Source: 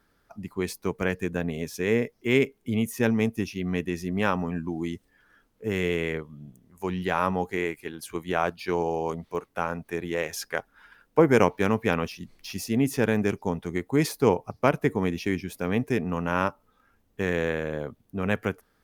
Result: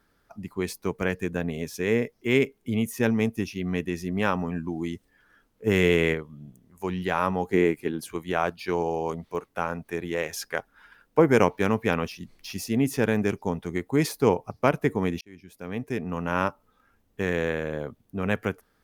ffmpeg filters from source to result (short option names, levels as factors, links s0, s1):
-filter_complex "[0:a]asplit=3[s0][s1][s2];[s0]afade=t=out:st=5.66:d=0.02[s3];[s1]acontrast=52,afade=t=in:st=5.66:d=0.02,afade=t=out:st=6.13:d=0.02[s4];[s2]afade=t=in:st=6.13:d=0.02[s5];[s3][s4][s5]amix=inputs=3:normalize=0,asettb=1/sr,asplit=3[s6][s7][s8];[s6]atrim=end=7.504[s9];[s7]atrim=start=7.5:end=8.09,asetpts=PTS-STARTPTS,afade=t=in:d=0.004:c=qsin,afade=t=out:st=0.586:d=0.004:c=qsin,equalizer=f=240:t=o:w=2.7:g=10[s10];[s8]atrim=start=8.086[s11];[s9][s10]acrossfade=d=0.004:c1=hsin:c2=qsin[s12];[s12][s11]acrossfade=d=0.004:c1=qsin:c2=hsin,asplit=2[s13][s14];[s13]atrim=end=15.21,asetpts=PTS-STARTPTS,afade=t=out:st=15.206:d=0.004:c=hsin[s15];[s14]atrim=start=15.21,asetpts=PTS-STARTPTS,afade=t=in:d=1.18[s16];[s15][s16]concat=n=2:v=0:a=1"